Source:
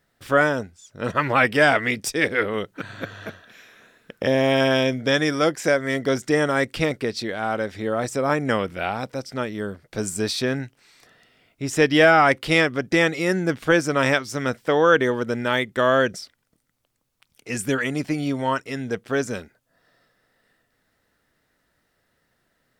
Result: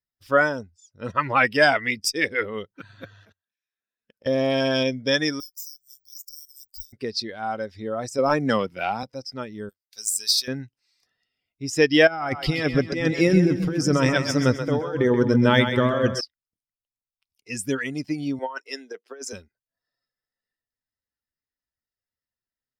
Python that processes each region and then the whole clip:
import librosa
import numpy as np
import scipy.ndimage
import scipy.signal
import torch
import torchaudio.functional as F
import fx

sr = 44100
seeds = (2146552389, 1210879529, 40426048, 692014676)

y = fx.chain(x, sr, fx.level_steps(step_db=22),
    fx.leveller(passes=1), at=(3.19, 4.83))
y = fx.chain(y, sr, fx.cheby2_bandstop(low_hz=180.0, high_hz=1900.0, order=4, stop_db=60),
    fx.resample_bad(factor=2, down='filtered', up='zero_stuff'),
    fx.clip_hard(threshold_db=-26.0), at=(5.4, 6.93))
y = fx.chain(y, sr, fx.highpass(hz=110.0, slope=24),
    fx.leveller(passes=1), at=(8.18, 9.03))
y = fx.chain(y, sr, fx.pre_emphasis(coefficient=0.97),
    fx.leveller(passes=2), at=(9.69, 10.48))
y = fx.chain(y, sr, fx.low_shelf(hz=380.0, db=7.0),
    fx.over_compress(threshold_db=-18.0, ratio=-0.5),
    fx.echo_split(split_hz=340.0, low_ms=261, high_ms=130, feedback_pct=52, wet_db=-5.5), at=(12.07, 16.21))
y = fx.chain(y, sr, fx.highpass(hz=320.0, slope=24),
    fx.over_compress(threshold_db=-26.0, ratio=-0.5),
    fx.band_widen(depth_pct=70), at=(18.39, 19.33))
y = fx.bin_expand(y, sr, power=1.5)
y = fx.peak_eq(y, sr, hz=5000.0, db=10.5, octaves=0.28)
y = F.gain(torch.from_numpy(y), 1.5).numpy()